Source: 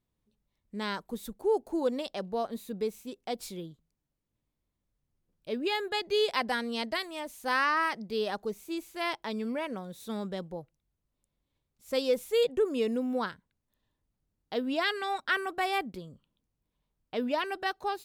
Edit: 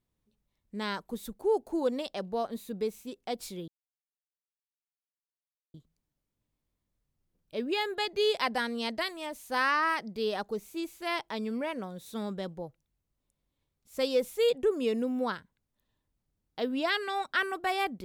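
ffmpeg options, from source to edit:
ffmpeg -i in.wav -filter_complex "[0:a]asplit=2[link_01][link_02];[link_01]atrim=end=3.68,asetpts=PTS-STARTPTS,afade=type=out:start_time=3.676:duration=0.004:curve=hsin,apad=pad_dur=2.06[link_03];[link_02]atrim=start=3.68,asetpts=PTS-STARTPTS,afade=type=in:duration=0.004:curve=hsin[link_04];[link_03][link_04]concat=n=2:v=0:a=1" out.wav

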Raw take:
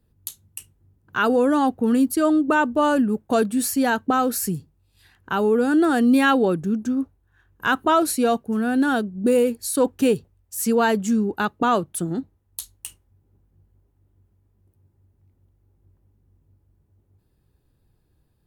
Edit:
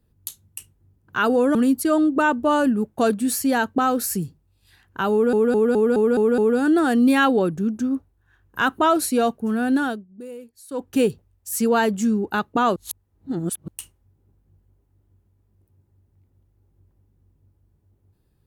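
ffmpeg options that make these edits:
ffmpeg -i in.wav -filter_complex "[0:a]asplit=12[link_01][link_02][link_03][link_04][link_05][link_06][link_07][link_08][link_09][link_10][link_11][link_12];[link_01]atrim=end=1.552[link_13];[link_02]atrim=start=1.868:end=5.652[link_14];[link_03]atrim=start=5.438:end=5.652[link_15];[link_04]atrim=start=5.438:end=5.652[link_16];[link_05]atrim=start=5.438:end=5.652[link_17];[link_06]atrim=start=5.438:end=5.652[link_18];[link_07]atrim=start=5.438:end=5.652[link_19];[link_08]atrim=start=5.438:end=9.14,asetpts=PTS-STARTPTS,afade=type=out:start_time=3.372:duration=0.33:silence=0.112202[link_20];[link_09]atrim=start=9.14:end=9.74,asetpts=PTS-STARTPTS,volume=-19dB[link_21];[link_10]atrim=start=9.74:end=11.822,asetpts=PTS-STARTPTS,afade=type=in:duration=0.33:silence=0.112202[link_22];[link_11]atrim=start=11.818:end=12.742,asetpts=PTS-STARTPTS,areverse[link_23];[link_12]atrim=start=12.738[link_24];[link_13][link_14]acrossfade=duration=0.004:curve1=hsin:curve2=hsin[link_25];[link_25][link_15]acrossfade=duration=0.004:curve1=hsin:curve2=hsin[link_26];[link_26][link_16]acrossfade=duration=0.004:curve1=hsin:curve2=hsin[link_27];[link_27][link_17]acrossfade=duration=0.004:curve1=hsin:curve2=hsin[link_28];[link_28][link_18]acrossfade=duration=0.004:curve1=hsin:curve2=hsin[link_29];[link_29][link_19]acrossfade=duration=0.004:curve1=hsin:curve2=hsin[link_30];[link_20][link_21][link_22]concat=n=3:v=0:a=1[link_31];[link_30][link_31]acrossfade=duration=0.004:curve1=hsin:curve2=hsin[link_32];[link_32][link_23]acrossfade=duration=0.004:curve1=hsin:curve2=hsin[link_33];[link_33][link_24]acrossfade=duration=0.004:curve1=hsin:curve2=hsin" out.wav

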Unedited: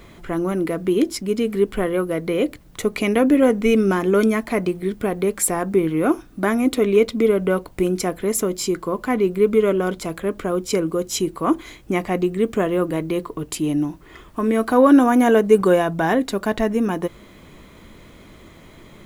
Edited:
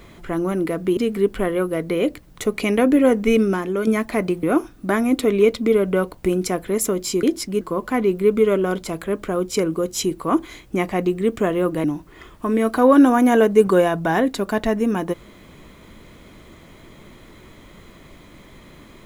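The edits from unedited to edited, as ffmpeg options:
ffmpeg -i in.wav -filter_complex "[0:a]asplit=7[link_01][link_02][link_03][link_04][link_05][link_06][link_07];[link_01]atrim=end=0.972[link_08];[link_02]atrim=start=1.348:end=4.25,asetpts=PTS-STARTPTS,afade=type=out:start_time=2.432:duration=0.47:curve=qua:silence=0.473151[link_09];[link_03]atrim=start=4.25:end=4.812,asetpts=PTS-STARTPTS,afade=type=in:duration=0.004:curve=hsin:silence=0.473151[link_10];[link_04]atrim=start=5.968:end=8.772[link_11];[link_05]atrim=start=0.968:end=1.352[link_12];[link_06]atrim=start=8.768:end=13.002[link_13];[link_07]atrim=start=13.778[link_14];[link_09][link_10]concat=n=2:v=0:a=1[link_15];[link_08][link_15]acrossfade=duration=0.004:curve1=hsin:curve2=hsin[link_16];[link_16][link_11]acrossfade=duration=0.004:curve1=hsin:curve2=hsin[link_17];[link_17][link_12]acrossfade=duration=0.004:curve1=hsin:curve2=hsin[link_18];[link_18][link_13]acrossfade=duration=0.004:curve1=hsin:curve2=hsin[link_19];[link_19][link_14]acrossfade=duration=0.004:curve1=hsin:curve2=hsin" out.wav

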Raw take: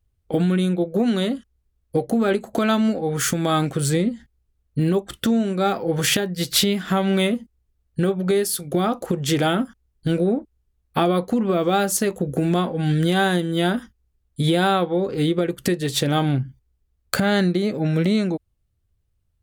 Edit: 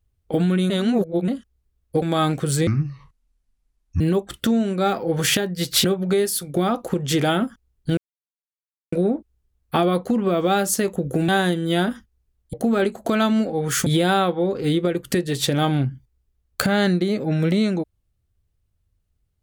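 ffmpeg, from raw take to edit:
ffmpeg -i in.wav -filter_complex "[0:a]asplit=11[link_01][link_02][link_03][link_04][link_05][link_06][link_07][link_08][link_09][link_10][link_11];[link_01]atrim=end=0.702[link_12];[link_02]atrim=start=0.698:end=1.282,asetpts=PTS-STARTPTS,areverse[link_13];[link_03]atrim=start=1.278:end=2.022[link_14];[link_04]atrim=start=3.348:end=4.004[link_15];[link_05]atrim=start=4:end=4.8,asetpts=PTS-STARTPTS,asetrate=26460,aresample=44100[link_16];[link_06]atrim=start=4.796:end=6.642[link_17];[link_07]atrim=start=8.018:end=10.15,asetpts=PTS-STARTPTS,afade=type=out:start_time=2.128:duration=0.004:curve=hsin,apad=pad_dur=0.95[link_18];[link_08]atrim=start=10.15:end=12.512,asetpts=PTS-STARTPTS,afade=type=in:duration=0.004:curve=hsin[link_19];[link_09]atrim=start=13.148:end=14.402[link_20];[link_10]atrim=start=2.018:end=3.352[link_21];[link_11]atrim=start=14.398[link_22];[link_12][link_13]acrossfade=duration=0.004:curve1=hsin:curve2=hsin[link_23];[link_23][link_14]acrossfade=duration=0.004:curve1=hsin:curve2=hsin[link_24];[link_24][link_15]acrossfade=duration=0.004:curve1=hsin:curve2=hsin[link_25];[link_25][link_16]acrossfade=duration=0.004:curve1=hsin:curve2=hsin[link_26];[link_26][link_17]acrossfade=duration=0.004:curve1=hsin:curve2=hsin[link_27];[link_18][link_19]concat=n=2:v=0:a=1[link_28];[link_27][link_28]acrossfade=duration=0.004:curve1=hsin:curve2=hsin[link_29];[link_29][link_20]acrossfade=duration=0.004:curve1=hsin:curve2=hsin[link_30];[link_30][link_21]acrossfade=duration=0.004:curve1=hsin:curve2=hsin[link_31];[link_31][link_22]acrossfade=duration=0.004:curve1=hsin:curve2=hsin" out.wav

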